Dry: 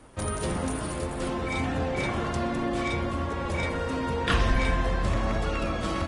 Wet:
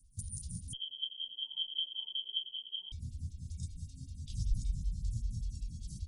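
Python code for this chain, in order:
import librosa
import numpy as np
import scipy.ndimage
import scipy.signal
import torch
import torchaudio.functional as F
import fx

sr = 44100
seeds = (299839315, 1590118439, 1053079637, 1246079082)

y = scipy.signal.sosfilt(scipy.signal.cheby2(4, 70, [470.0, 1700.0], 'bandstop', fs=sr, output='sos'), x)
y = fx.freq_invert(y, sr, carrier_hz=3200, at=(0.73, 2.92))
y = fx.stagger_phaser(y, sr, hz=5.2)
y = F.gain(torch.from_numpy(y), -1.0).numpy()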